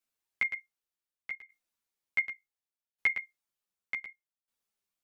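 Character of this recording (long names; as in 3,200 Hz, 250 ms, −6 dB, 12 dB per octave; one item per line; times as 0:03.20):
tremolo saw down 0.67 Hz, depth 90%
a shimmering, thickened sound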